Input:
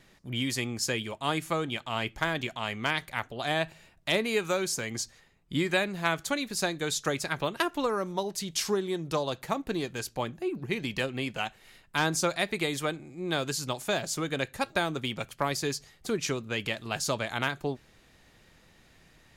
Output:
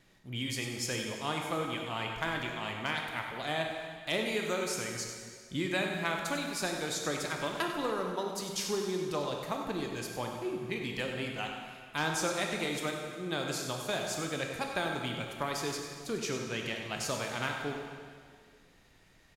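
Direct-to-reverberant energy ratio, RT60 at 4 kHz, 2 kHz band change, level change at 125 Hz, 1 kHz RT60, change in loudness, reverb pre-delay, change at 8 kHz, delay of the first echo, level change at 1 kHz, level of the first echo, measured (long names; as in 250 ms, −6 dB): 1.0 dB, 1.8 s, −3.5 dB, −4.0 dB, 2.0 s, −3.5 dB, 17 ms, −3.5 dB, 97 ms, −3.5 dB, −10.0 dB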